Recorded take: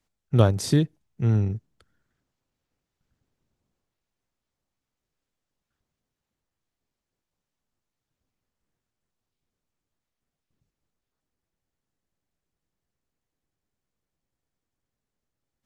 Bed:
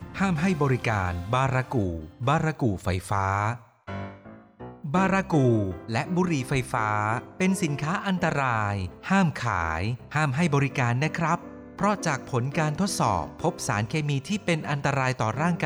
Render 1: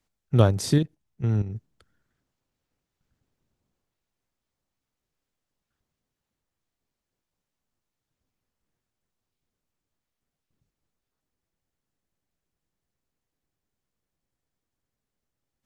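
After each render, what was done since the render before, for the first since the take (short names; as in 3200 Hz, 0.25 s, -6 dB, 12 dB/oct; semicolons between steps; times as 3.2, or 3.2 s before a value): 0.78–1.56 level quantiser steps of 11 dB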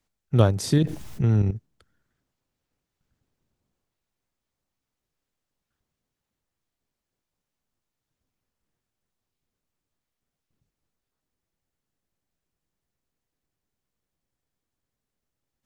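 0.76–1.51 fast leveller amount 70%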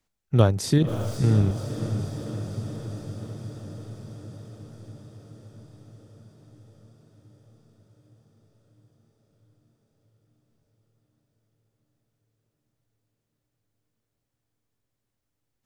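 diffused feedback echo 0.56 s, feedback 72%, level -9.5 dB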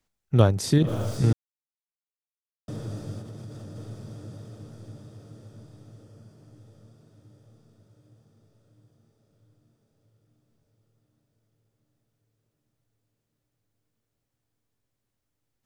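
1.33–2.68 mute; 3.19–3.76 compressor, threshold -36 dBFS; 6.03–6.57 notch 3700 Hz, Q 11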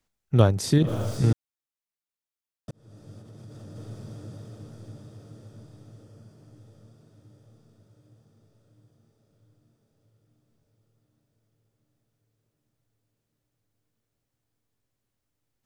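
2.71–3.98 fade in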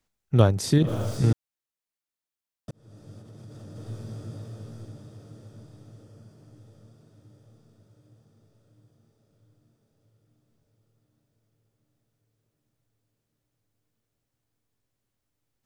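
3.84–4.85 doubler 18 ms -3.5 dB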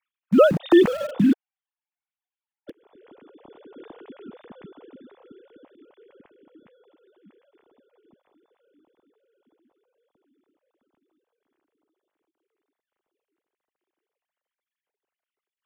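sine-wave speech; in parallel at -5 dB: sample gate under -30 dBFS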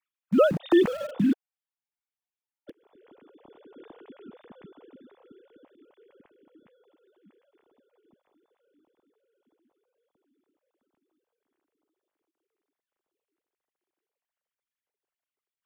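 gain -5 dB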